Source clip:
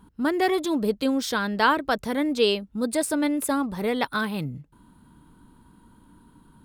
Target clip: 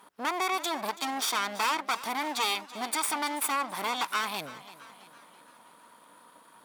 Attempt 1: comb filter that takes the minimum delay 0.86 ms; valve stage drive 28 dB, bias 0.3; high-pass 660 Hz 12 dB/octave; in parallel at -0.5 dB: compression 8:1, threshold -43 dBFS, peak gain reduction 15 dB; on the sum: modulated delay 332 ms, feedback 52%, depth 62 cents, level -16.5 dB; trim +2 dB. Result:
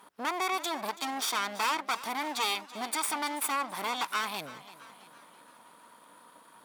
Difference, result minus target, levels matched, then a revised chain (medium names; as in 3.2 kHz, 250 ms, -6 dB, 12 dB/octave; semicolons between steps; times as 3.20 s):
compression: peak gain reduction +6 dB
comb filter that takes the minimum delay 0.86 ms; valve stage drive 28 dB, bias 0.3; high-pass 660 Hz 12 dB/octave; in parallel at -0.5 dB: compression 8:1, threshold -36 dBFS, peak gain reduction 8.5 dB; on the sum: modulated delay 332 ms, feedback 52%, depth 62 cents, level -16.5 dB; trim +2 dB